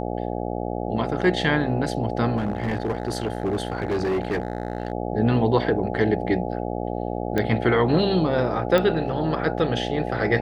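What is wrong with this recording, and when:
mains buzz 60 Hz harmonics 14 −28 dBFS
0:02.36–0:04.92: clipping −20 dBFS
0:07.38: click −11 dBFS
0:08.78: click −9 dBFS

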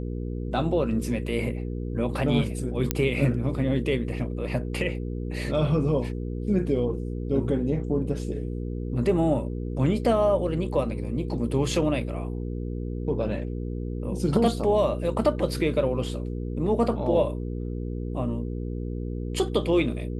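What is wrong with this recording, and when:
mains hum 60 Hz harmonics 8 −31 dBFS
0:02.91: click −6 dBFS

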